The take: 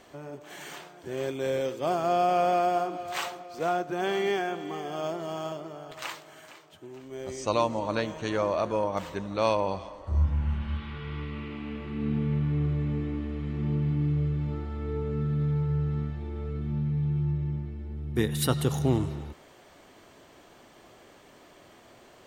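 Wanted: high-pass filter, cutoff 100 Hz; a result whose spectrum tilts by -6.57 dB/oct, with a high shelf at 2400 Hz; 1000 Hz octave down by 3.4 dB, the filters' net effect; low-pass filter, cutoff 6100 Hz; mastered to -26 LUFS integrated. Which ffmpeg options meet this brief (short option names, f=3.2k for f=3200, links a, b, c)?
-af "highpass=100,lowpass=6.1k,equalizer=f=1k:t=o:g=-4,highshelf=f=2.4k:g=-9,volume=5.5dB"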